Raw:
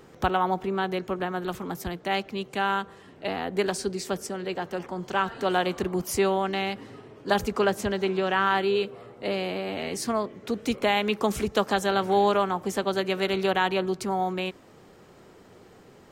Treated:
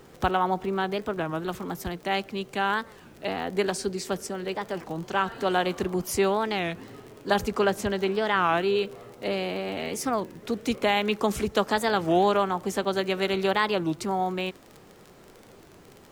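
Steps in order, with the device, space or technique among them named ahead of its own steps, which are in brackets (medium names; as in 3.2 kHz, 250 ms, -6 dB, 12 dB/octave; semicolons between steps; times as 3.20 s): warped LP (warped record 33 1/3 rpm, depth 250 cents; crackle 34 per s -35 dBFS; pink noise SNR 34 dB)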